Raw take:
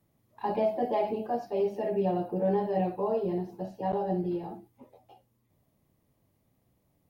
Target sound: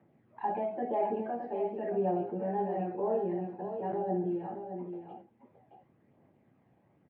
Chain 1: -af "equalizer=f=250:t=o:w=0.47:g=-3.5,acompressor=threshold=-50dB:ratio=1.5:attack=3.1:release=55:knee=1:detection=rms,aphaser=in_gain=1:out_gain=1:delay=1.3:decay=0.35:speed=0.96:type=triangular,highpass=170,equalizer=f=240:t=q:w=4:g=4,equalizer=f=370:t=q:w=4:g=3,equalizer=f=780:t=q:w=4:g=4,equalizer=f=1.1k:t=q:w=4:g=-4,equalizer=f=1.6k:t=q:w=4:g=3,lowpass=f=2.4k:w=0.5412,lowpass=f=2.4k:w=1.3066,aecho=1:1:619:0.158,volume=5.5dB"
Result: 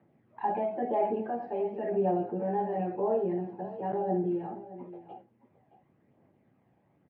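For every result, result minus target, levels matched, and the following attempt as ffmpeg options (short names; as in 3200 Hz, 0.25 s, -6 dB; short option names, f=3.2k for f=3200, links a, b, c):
echo-to-direct -7.5 dB; compressor: peak gain reduction -2.5 dB
-af "equalizer=f=250:t=o:w=0.47:g=-3.5,acompressor=threshold=-50dB:ratio=1.5:attack=3.1:release=55:knee=1:detection=rms,aphaser=in_gain=1:out_gain=1:delay=1.3:decay=0.35:speed=0.96:type=triangular,highpass=170,equalizer=f=240:t=q:w=4:g=4,equalizer=f=370:t=q:w=4:g=3,equalizer=f=780:t=q:w=4:g=4,equalizer=f=1.1k:t=q:w=4:g=-4,equalizer=f=1.6k:t=q:w=4:g=3,lowpass=f=2.4k:w=0.5412,lowpass=f=2.4k:w=1.3066,aecho=1:1:619:0.376,volume=5.5dB"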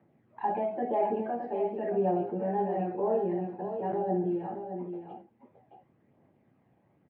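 compressor: peak gain reduction -2.5 dB
-af "equalizer=f=250:t=o:w=0.47:g=-3.5,acompressor=threshold=-58dB:ratio=1.5:attack=3.1:release=55:knee=1:detection=rms,aphaser=in_gain=1:out_gain=1:delay=1.3:decay=0.35:speed=0.96:type=triangular,highpass=170,equalizer=f=240:t=q:w=4:g=4,equalizer=f=370:t=q:w=4:g=3,equalizer=f=780:t=q:w=4:g=4,equalizer=f=1.1k:t=q:w=4:g=-4,equalizer=f=1.6k:t=q:w=4:g=3,lowpass=f=2.4k:w=0.5412,lowpass=f=2.4k:w=1.3066,aecho=1:1:619:0.376,volume=5.5dB"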